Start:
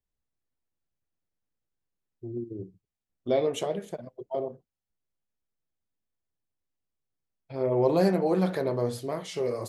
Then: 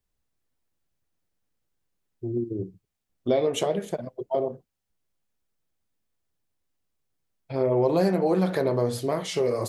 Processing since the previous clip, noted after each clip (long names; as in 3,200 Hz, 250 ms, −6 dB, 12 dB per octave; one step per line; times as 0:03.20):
downward compressor 2.5 to 1, threshold −28 dBFS, peak gain reduction 7.5 dB
level +7 dB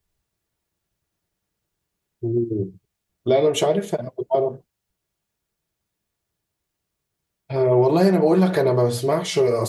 notch comb filter 260 Hz
level +7 dB